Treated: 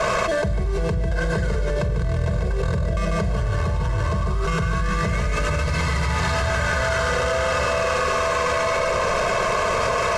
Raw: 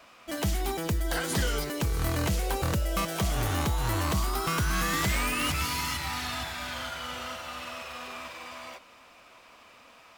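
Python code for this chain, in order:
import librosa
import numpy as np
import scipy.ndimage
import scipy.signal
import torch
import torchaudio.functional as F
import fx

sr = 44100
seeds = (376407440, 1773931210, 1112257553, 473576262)

y = scipy.signal.medfilt(x, 15)
y = scipy.signal.sosfilt(scipy.signal.butter(4, 9300.0, 'lowpass', fs=sr, output='sos'), y)
y = fx.peak_eq(y, sr, hz=130.0, db=4.5, octaves=0.64)
y = fx.notch(y, sr, hz=1000.0, q=13.0)
y = y + 0.96 * np.pad(y, (int(1.9 * sr / 1000.0), 0))[:len(y)]
y = y + 10.0 ** (-5.0 / 20.0) * np.pad(y, (int(146 * sr / 1000.0), 0))[:len(y)]
y = fx.room_shoebox(y, sr, seeds[0], volume_m3=2400.0, walls='furnished', distance_m=1.5)
y = fx.env_flatten(y, sr, amount_pct=100)
y = F.gain(torch.from_numpy(y), -5.5).numpy()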